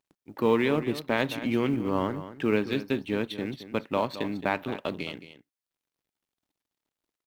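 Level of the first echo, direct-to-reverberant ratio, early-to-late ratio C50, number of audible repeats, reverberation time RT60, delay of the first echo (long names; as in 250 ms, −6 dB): −13.0 dB, no reverb audible, no reverb audible, 1, no reverb audible, 219 ms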